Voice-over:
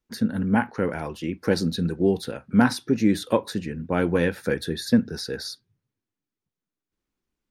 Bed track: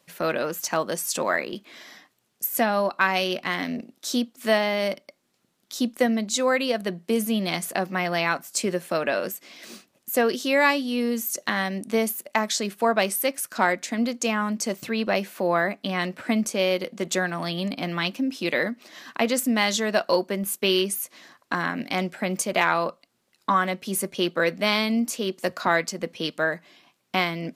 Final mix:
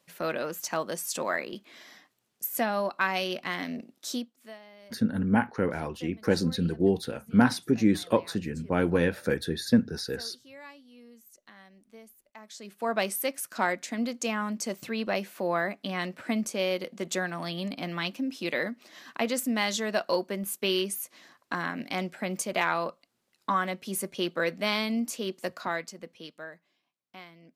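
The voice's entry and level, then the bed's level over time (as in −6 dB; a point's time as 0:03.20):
4.80 s, −2.5 dB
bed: 0:04.11 −5.5 dB
0:04.58 −27.5 dB
0:12.32 −27.5 dB
0:12.95 −5.5 dB
0:25.32 −5.5 dB
0:26.94 −23.5 dB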